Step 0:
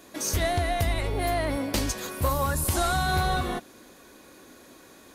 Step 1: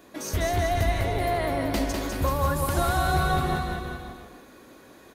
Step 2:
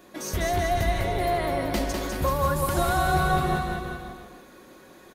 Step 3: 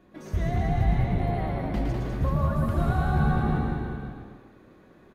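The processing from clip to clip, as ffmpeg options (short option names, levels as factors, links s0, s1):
-filter_complex "[0:a]equalizer=f=8500:t=o:w=2.3:g=-7.5,asplit=2[s0][s1];[s1]aecho=0:1:200|380|542|687.8|819:0.631|0.398|0.251|0.158|0.1[s2];[s0][s2]amix=inputs=2:normalize=0"
-af "aecho=1:1:5.5:0.32"
-filter_complex "[0:a]bass=f=250:g=12,treble=f=4000:g=-14,asplit=2[s0][s1];[s1]asplit=4[s2][s3][s4][s5];[s2]adelay=112,afreqshift=72,volume=0.631[s6];[s3]adelay=224,afreqshift=144,volume=0.195[s7];[s4]adelay=336,afreqshift=216,volume=0.061[s8];[s5]adelay=448,afreqshift=288,volume=0.0188[s9];[s6][s7][s8][s9]amix=inputs=4:normalize=0[s10];[s0][s10]amix=inputs=2:normalize=0,volume=0.355"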